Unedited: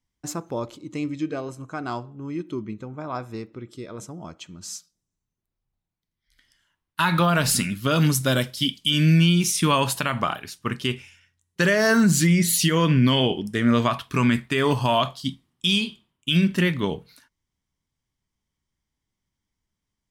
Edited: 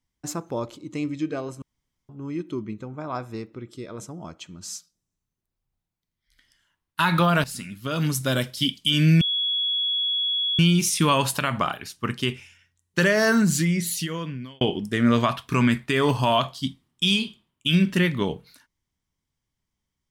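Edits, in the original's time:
1.62–2.09 s: room tone
7.44–8.65 s: fade in, from -17 dB
9.21 s: add tone 3.36 kHz -21.5 dBFS 1.38 s
11.73–13.23 s: fade out

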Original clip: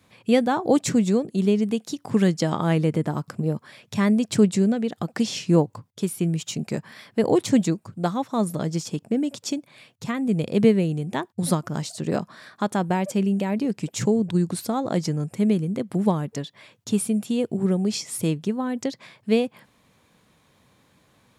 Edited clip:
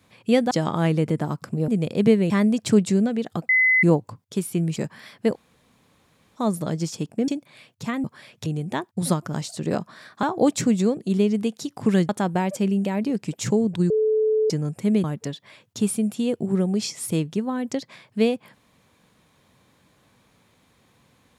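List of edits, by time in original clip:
0.51–2.37 s: move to 12.64 s
3.54–3.96 s: swap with 10.25–10.87 s
5.15–5.49 s: bleep 2.03 kHz -14.5 dBFS
6.42–6.69 s: delete
7.26–8.30 s: room tone, crossfade 0.06 s
9.21–9.49 s: delete
14.45–15.05 s: bleep 434 Hz -17 dBFS
15.59–16.15 s: delete

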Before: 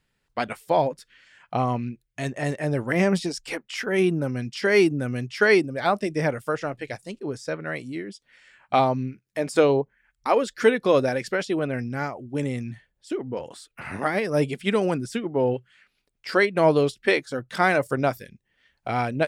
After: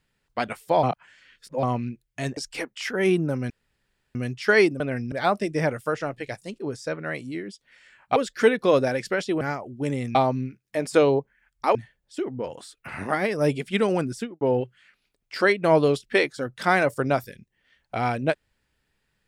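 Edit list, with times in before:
0.83–1.63 s: reverse
2.37–3.30 s: delete
4.43–5.08 s: room tone
8.77–10.37 s: move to 12.68 s
11.62–11.94 s: move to 5.73 s
15.08–15.34 s: studio fade out

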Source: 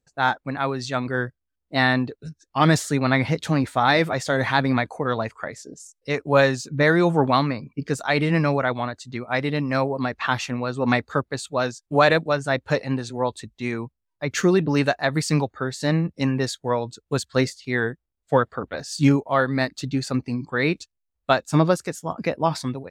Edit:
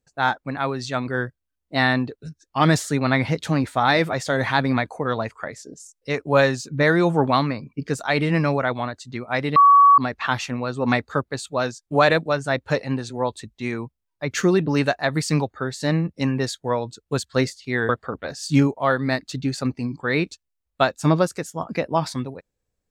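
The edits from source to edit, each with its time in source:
9.56–9.98 s: bleep 1.13 kHz -8.5 dBFS
17.89–18.38 s: delete

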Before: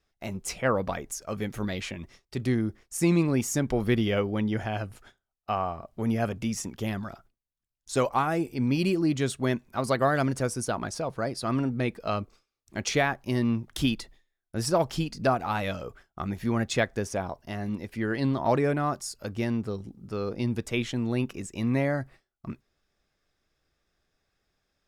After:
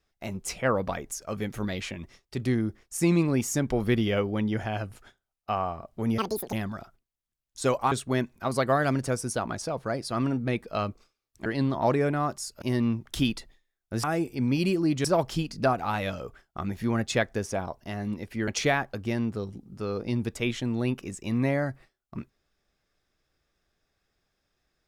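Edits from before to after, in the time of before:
6.18–6.84 s: speed 191%
8.23–9.24 s: move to 14.66 s
12.78–13.24 s: swap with 18.09–19.25 s

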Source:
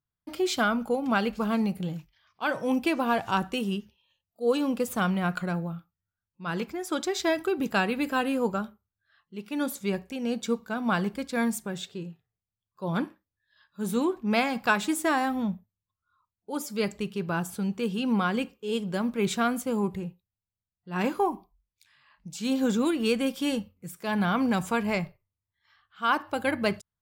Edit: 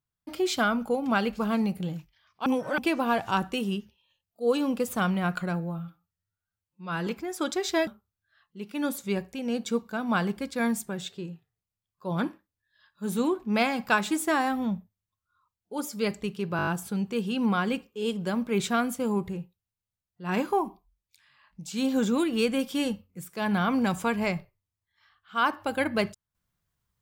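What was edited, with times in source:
2.46–2.78 s: reverse
5.60–6.58 s: stretch 1.5×
7.38–8.64 s: delete
17.34 s: stutter 0.02 s, 6 plays

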